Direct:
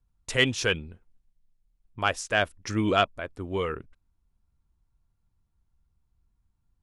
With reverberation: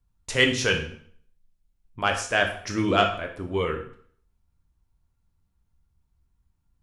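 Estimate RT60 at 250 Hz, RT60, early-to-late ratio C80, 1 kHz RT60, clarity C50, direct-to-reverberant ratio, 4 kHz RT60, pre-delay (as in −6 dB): 0.55 s, 0.55 s, 12.0 dB, 0.55 s, 8.5 dB, 3.0 dB, 0.50 s, 6 ms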